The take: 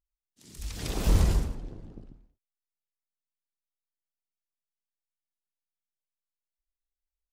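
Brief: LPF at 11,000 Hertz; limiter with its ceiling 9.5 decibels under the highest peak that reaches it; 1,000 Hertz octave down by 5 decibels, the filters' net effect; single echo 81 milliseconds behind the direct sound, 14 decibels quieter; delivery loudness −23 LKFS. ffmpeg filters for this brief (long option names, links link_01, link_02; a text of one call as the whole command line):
ffmpeg -i in.wav -af "lowpass=11000,equalizer=frequency=1000:width_type=o:gain=-6.5,alimiter=limit=-20dB:level=0:latency=1,aecho=1:1:81:0.2,volume=10.5dB" out.wav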